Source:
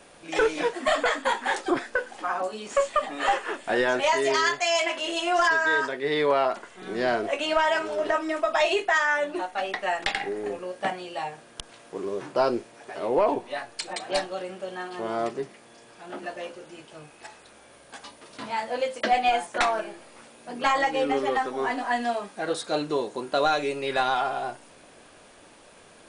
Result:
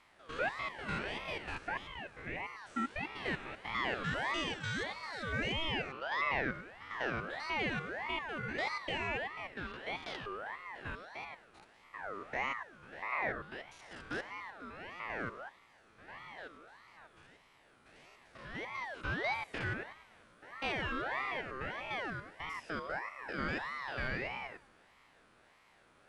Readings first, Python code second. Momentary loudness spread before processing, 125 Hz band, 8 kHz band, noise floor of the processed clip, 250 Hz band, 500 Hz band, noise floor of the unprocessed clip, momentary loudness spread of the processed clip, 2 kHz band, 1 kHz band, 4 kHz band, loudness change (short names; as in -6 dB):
16 LU, +1.0 dB, -20.0 dB, -65 dBFS, -11.5 dB, -18.0 dB, -52 dBFS, 14 LU, -9.5 dB, -14.5 dB, -11.0 dB, -12.5 dB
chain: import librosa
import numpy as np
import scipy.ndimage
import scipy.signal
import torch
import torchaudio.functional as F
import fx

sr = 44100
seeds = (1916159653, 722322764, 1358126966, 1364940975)

y = fx.spec_steps(x, sr, hold_ms=100)
y = fx.high_shelf(y, sr, hz=4000.0, db=-12.0)
y = fx.comb_fb(y, sr, f0_hz=91.0, decay_s=1.7, harmonics='odd', damping=0.0, mix_pct=60)
y = fx.ring_lfo(y, sr, carrier_hz=1200.0, swing_pct=35, hz=1.6)